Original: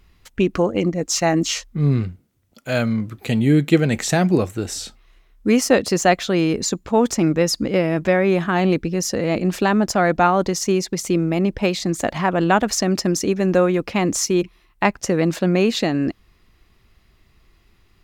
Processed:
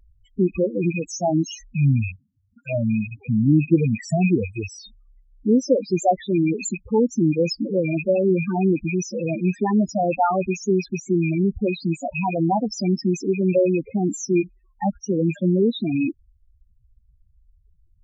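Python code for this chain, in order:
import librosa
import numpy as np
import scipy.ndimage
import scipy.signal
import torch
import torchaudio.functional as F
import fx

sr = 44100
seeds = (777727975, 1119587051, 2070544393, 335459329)

y = fx.rattle_buzz(x, sr, strikes_db=-30.0, level_db=-8.0)
y = fx.spec_topn(y, sr, count=4)
y = fx.vibrato(y, sr, rate_hz=2.0, depth_cents=39.0)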